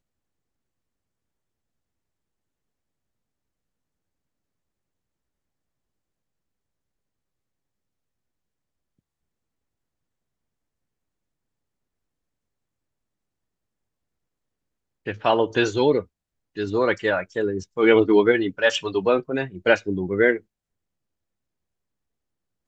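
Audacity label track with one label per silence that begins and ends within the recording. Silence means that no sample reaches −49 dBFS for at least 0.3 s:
16.050000	16.550000	silence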